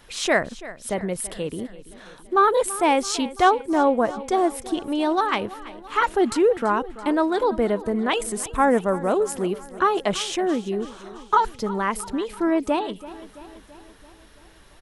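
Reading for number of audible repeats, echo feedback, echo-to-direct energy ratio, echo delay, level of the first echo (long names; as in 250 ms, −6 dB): 4, 59%, −15.0 dB, 334 ms, −17.0 dB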